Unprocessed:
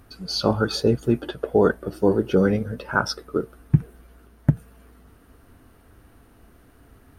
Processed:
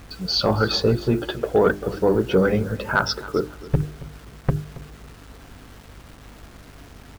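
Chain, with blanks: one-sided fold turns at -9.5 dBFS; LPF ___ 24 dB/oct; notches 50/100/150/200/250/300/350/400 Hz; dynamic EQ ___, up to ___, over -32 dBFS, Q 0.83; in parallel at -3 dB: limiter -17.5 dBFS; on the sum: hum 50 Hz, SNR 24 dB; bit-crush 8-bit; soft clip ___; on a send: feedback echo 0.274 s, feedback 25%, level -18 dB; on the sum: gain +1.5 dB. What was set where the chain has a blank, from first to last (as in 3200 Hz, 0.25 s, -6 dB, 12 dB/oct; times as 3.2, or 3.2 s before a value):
5400 Hz, 250 Hz, -4 dB, -8 dBFS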